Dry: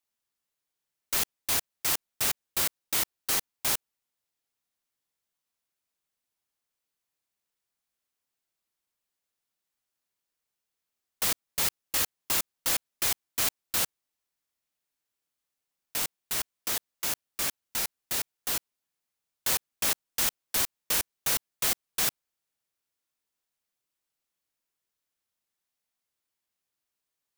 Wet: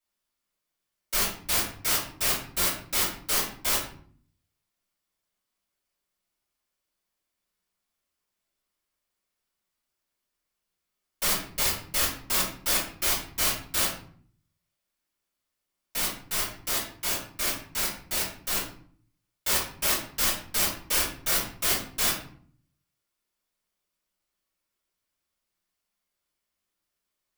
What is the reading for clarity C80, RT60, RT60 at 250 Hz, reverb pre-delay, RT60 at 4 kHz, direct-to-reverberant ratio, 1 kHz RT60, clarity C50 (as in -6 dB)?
9.5 dB, 0.55 s, 0.80 s, 3 ms, 0.35 s, -10.5 dB, 0.50 s, 5.5 dB